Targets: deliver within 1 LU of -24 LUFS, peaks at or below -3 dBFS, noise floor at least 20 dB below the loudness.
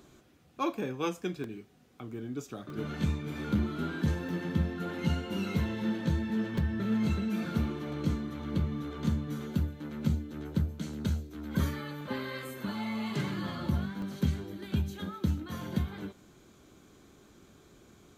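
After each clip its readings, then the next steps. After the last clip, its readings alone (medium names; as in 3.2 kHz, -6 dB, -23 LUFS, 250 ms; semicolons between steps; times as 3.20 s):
dropouts 7; longest dropout 1.9 ms; loudness -33.5 LUFS; peak level -16.0 dBFS; loudness target -24.0 LUFS
-> interpolate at 1.44/2.70/4.29/6.58/10.13/12.01/14.02 s, 1.9 ms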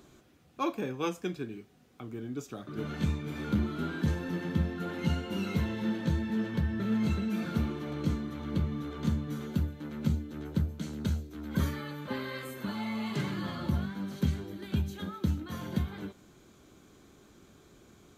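dropouts 0; loudness -33.5 LUFS; peak level -16.0 dBFS; loudness target -24.0 LUFS
-> trim +9.5 dB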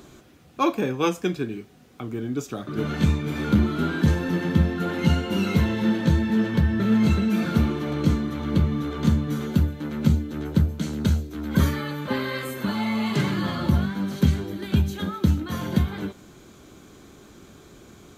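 loudness -24.0 LUFS; peak level -6.5 dBFS; noise floor -49 dBFS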